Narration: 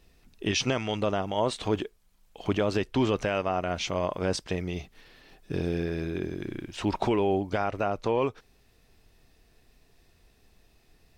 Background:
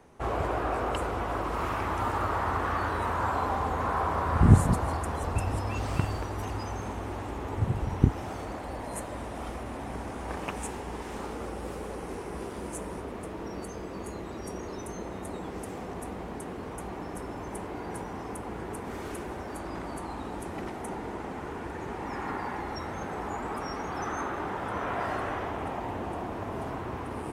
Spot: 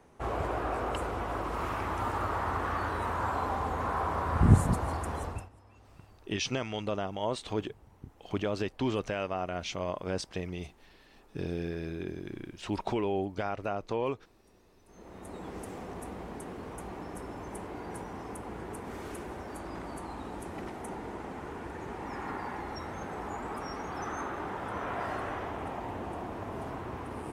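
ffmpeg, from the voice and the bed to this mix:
-filter_complex "[0:a]adelay=5850,volume=-5.5dB[a];[1:a]volume=20dB,afade=t=out:st=5.19:d=0.3:silence=0.0668344,afade=t=in:st=14.85:d=0.66:silence=0.0707946[b];[a][b]amix=inputs=2:normalize=0"

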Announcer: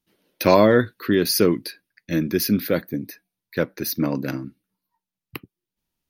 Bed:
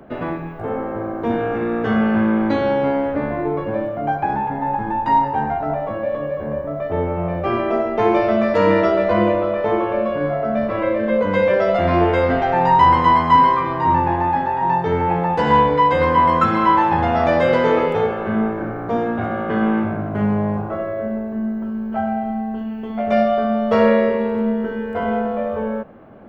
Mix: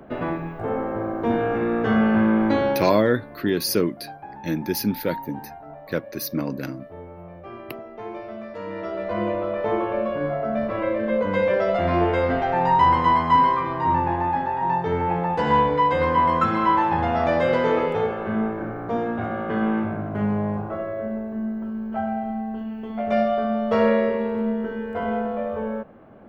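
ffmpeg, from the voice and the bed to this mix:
-filter_complex "[0:a]adelay=2350,volume=-3.5dB[a];[1:a]volume=12.5dB,afade=t=out:st=2.59:d=0.42:silence=0.141254,afade=t=in:st=8.71:d=0.98:silence=0.199526[b];[a][b]amix=inputs=2:normalize=0"

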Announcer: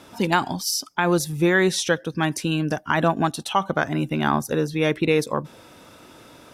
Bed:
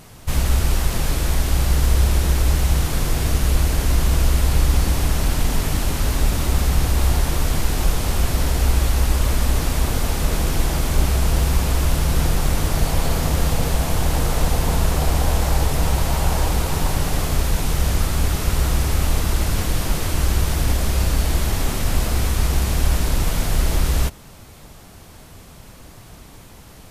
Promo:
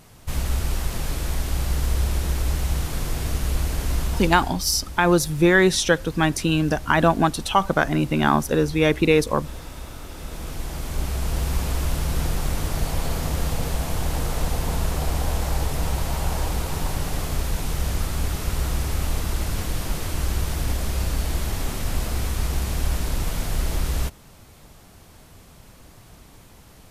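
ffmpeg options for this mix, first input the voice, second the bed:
-filter_complex "[0:a]adelay=4000,volume=2.5dB[a];[1:a]volume=6dB,afade=t=out:st=3.98:d=0.59:silence=0.266073,afade=t=in:st=10.1:d=1.49:silence=0.251189[b];[a][b]amix=inputs=2:normalize=0"

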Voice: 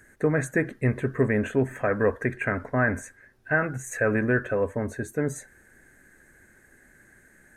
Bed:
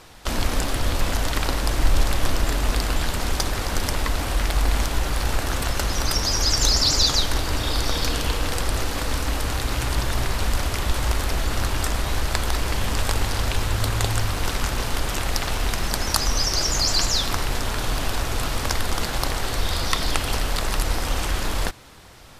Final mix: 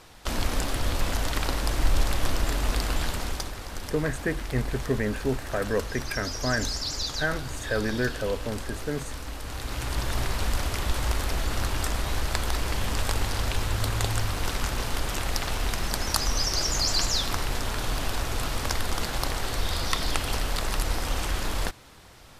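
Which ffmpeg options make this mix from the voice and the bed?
-filter_complex "[0:a]adelay=3700,volume=-4dB[a];[1:a]volume=4dB,afade=t=out:st=3.06:d=0.49:silence=0.398107,afade=t=in:st=9.41:d=0.76:silence=0.398107[b];[a][b]amix=inputs=2:normalize=0"

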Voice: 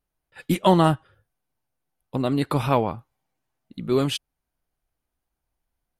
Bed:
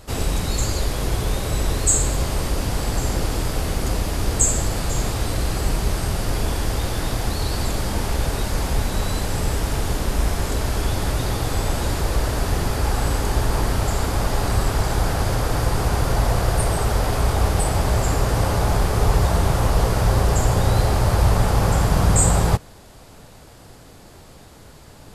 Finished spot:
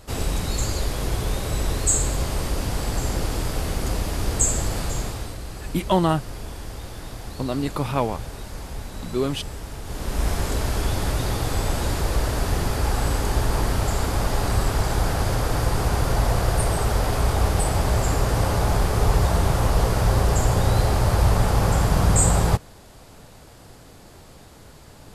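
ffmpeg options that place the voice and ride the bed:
-filter_complex "[0:a]adelay=5250,volume=-2.5dB[a];[1:a]volume=8dB,afade=t=out:st=4.81:d=0.57:silence=0.334965,afade=t=in:st=9.84:d=0.47:silence=0.298538[b];[a][b]amix=inputs=2:normalize=0"

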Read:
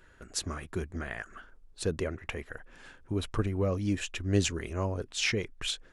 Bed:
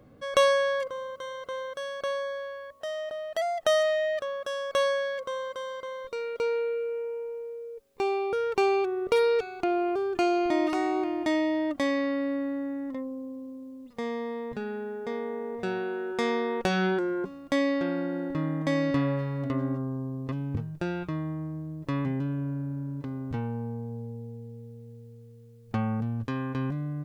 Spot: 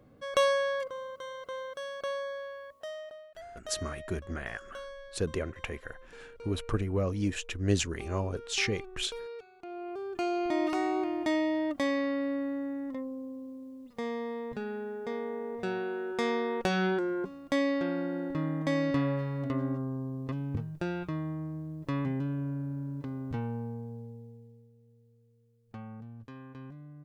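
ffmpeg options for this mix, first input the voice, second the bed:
-filter_complex "[0:a]adelay=3350,volume=-0.5dB[a];[1:a]volume=12dB,afade=t=out:st=2.71:d=0.61:silence=0.188365,afade=t=in:st=9.63:d=1.12:silence=0.158489,afade=t=out:st=23.53:d=1.18:silence=0.223872[b];[a][b]amix=inputs=2:normalize=0"

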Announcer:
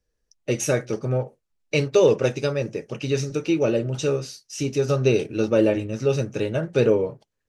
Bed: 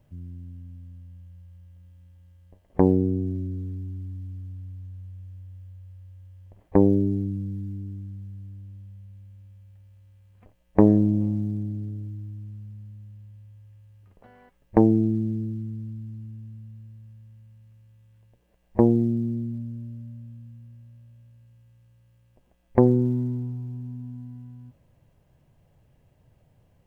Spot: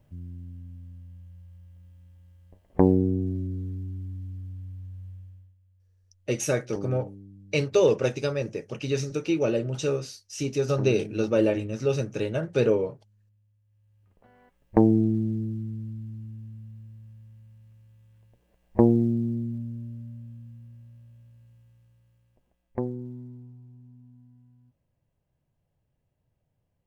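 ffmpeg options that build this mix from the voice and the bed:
-filter_complex "[0:a]adelay=5800,volume=-3.5dB[a];[1:a]volume=18dB,afade=t=out:st=5.1:d=0.45:silence=0.11885,afade=t=in:st=13.65:d=1.32:silence=0.11885,afade=t=out:st=21.51:d=1.41:silence=0.188365[b];[a][b]amix=inputs=2:normalize=0"

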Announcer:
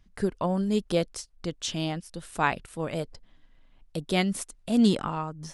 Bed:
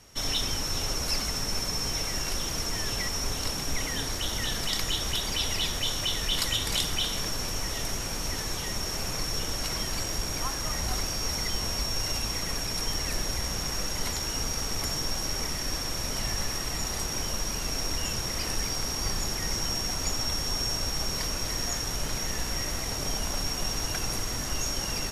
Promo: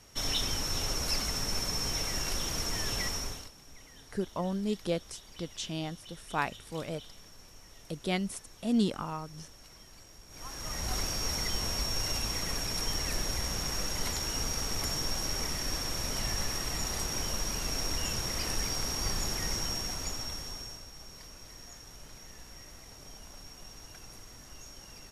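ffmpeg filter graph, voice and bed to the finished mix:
-filter_complex "[0:a]adelay=3950,volume=-6dB[a];[1:a]volume=17.5dB,afade=t=out:st=3.08:d=0.42:silence=0.1,afade=t=in:st=10.28:d=0.73:silence=0.1,afade=t=out:st=19.41:d=1.45:silence=0.158489[b];[a][b]amix=inputs=2:normalize=0"

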